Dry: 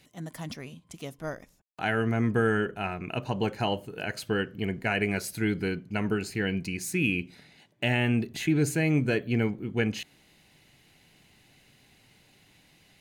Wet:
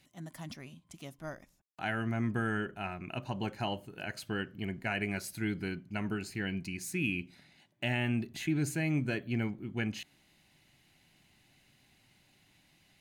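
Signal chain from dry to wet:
parametric band 460 Hz −12 dB 0.2 octaves
level −6 dB

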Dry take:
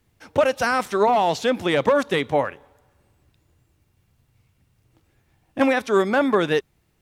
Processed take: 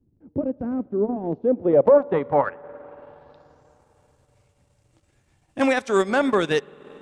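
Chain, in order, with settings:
low-pass filter sweep 290 Hz → 8,100 Hz, 0:01.22–0:03.84
spring reverb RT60 3.6 s, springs 47/54 ms, chirp 30 ms, DRR 18 dB
transient designer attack −3 dB, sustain −8 dB

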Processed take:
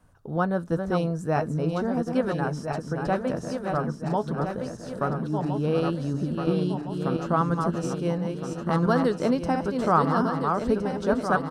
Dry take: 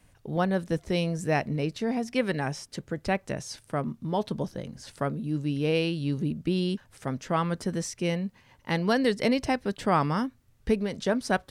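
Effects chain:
feedback delay that plays each chunk backwards 682 ms, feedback 71%, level −5 dB
high shelf with overshoot 1,700 Hz −6.5 dB, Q 3
double-tracking delay 12 ms −14 dB

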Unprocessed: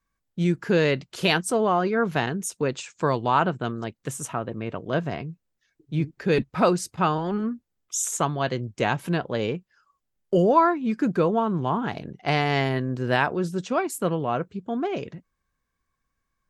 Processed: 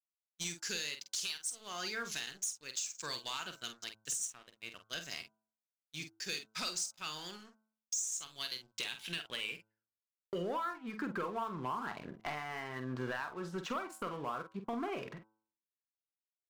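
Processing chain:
band-pass filter sweep 6,200 Hz → 1,100 Hz, 0:07.96–0:10.94
downward expander −53 dBFS
parametric band 790 Hz −12.5 dB 2.2 octaves
downward compressor 12 to 1, threshold −52 dBFS, peak gain reduction 25 dB
leveller curve on the samples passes 3
double-tracking delay 47 ms −9 dB
hum removal 109.2 Hz, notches 14
level +7 dB

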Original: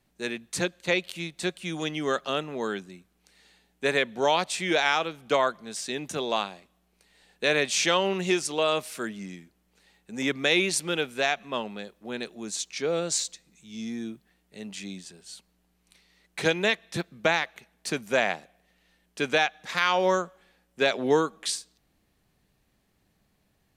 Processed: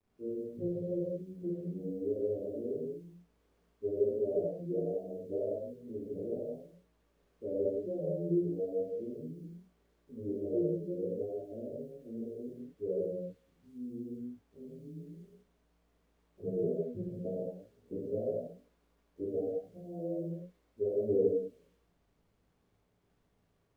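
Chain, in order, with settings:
every overlapping window played backwards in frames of 34 ms
Butterworth low-pass 580 Hz 72 dB per octave
bit reduction 12 bits
reverb whose tail is shaped and stops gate 240 ms flat, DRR −5.5 dB
level −8 dB

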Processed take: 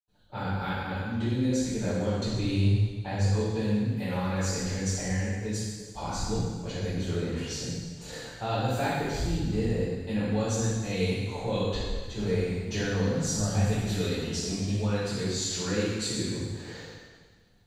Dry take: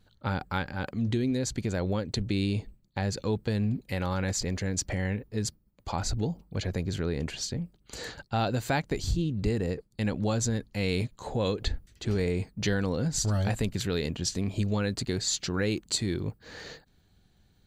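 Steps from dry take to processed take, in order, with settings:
0:02.22–0:03.19: parametric band 110 Hz +11.5 dB 0.33 octaves
convolution reverb RT60 1.6 s, pre-delay 77 ms, DRR −60 dB
level +3.5 dB

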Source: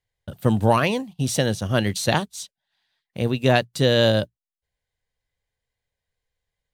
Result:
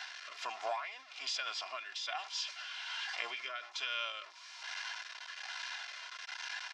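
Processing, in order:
converter with a step at zero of −31 dBFS
Chebyshev band-pass filter 1,000–6,500 Hz, order 3
downward compressor 8 to 1, threshold −36 dBFS, peak gain reduction 17.5 dB
rotating-speaker cabinet horn 1.2 Hz
formants moved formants −3 semitones
comb filter 2.9 ms, depth 64%
far-end echo of a speakerphone 90 ms, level −25 dB
level that may fall only so fast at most 110 dB per second
level +1 dB

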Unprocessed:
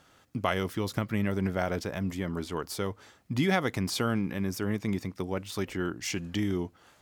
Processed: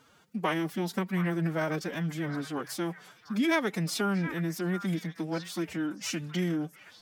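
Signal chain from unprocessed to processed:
phase-vocoder pitch shift with formants kept +9.5 semitones
echo through a band-pass that steps 723 ms, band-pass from 1,500 Hz, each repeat 1.4 octaves, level −8.5 dB

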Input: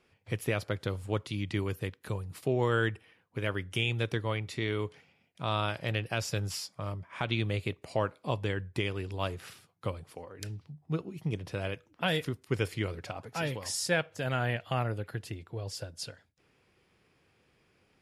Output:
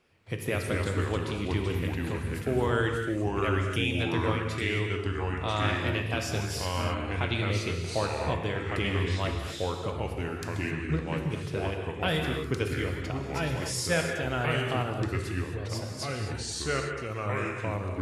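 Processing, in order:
delay with pitch and tempo change per echo 142 ms, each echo −3 semitones, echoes 2
reverb whose tail is shaped and stops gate 290 ms flat, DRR 3 dB

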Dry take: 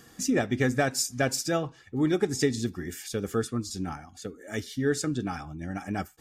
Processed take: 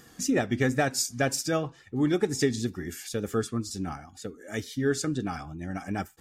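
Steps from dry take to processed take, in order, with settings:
tape wow and flutter 60 cents

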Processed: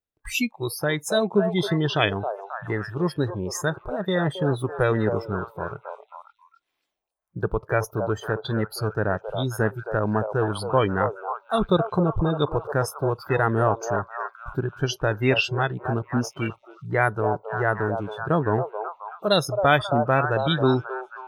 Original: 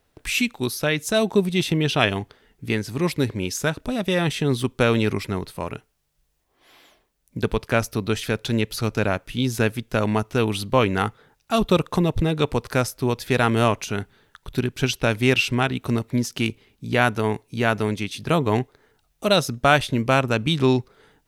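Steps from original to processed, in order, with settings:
echo through a band-pass that steps 269 ms, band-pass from 680 Hz, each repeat 0.7 octaves, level −3 dB
noise reduction from a noise print of the clip's start 26 dB
level −1.5 dB

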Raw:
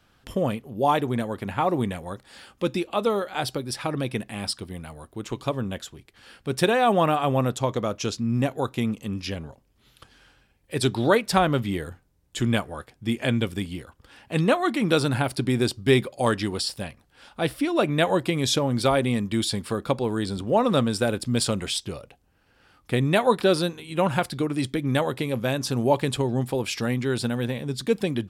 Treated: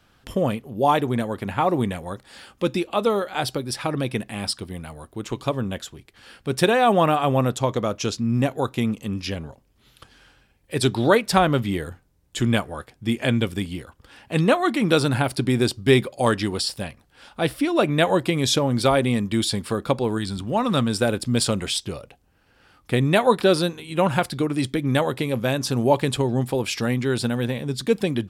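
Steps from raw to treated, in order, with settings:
0:20.17–0:20.89: parametric band 490 Hz −13.5 dB → −5 dB 1.1 octaves
level +2.5 dB

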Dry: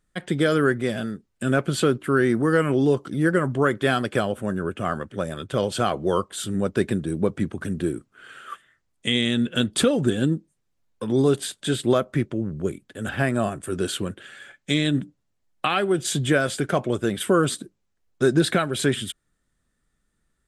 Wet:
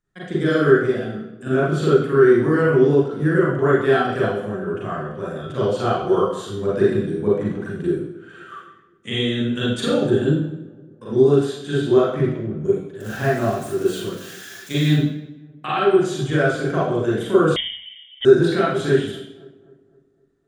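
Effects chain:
0:13.00–0:14.93: spike at every zero crossing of −22 dBFS
in parallel at −2.5 dB: output level in coarse steps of 22 dB
on the sum: feedback echo with a low-pass in the loop 257 ms, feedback 51%, low-pass 1,500 Hz, level −21 dB
convolution reverb RT60 0.70 s, pre-delay 36 ms, DRR −9 dB
0:17.56–0:18.25: voice inversion scrambler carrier 3,400 Hz
level −17.5 dB

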